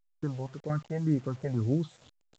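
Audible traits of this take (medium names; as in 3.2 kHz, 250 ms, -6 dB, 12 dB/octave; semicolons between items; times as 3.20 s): random-step tremolo 4.3 Hz, depth 90%; phasing stages 6, 1.9 Hz, lowest notch 300–1100 Hz; a quantiser's noise floor 10-bit, dither none; A-law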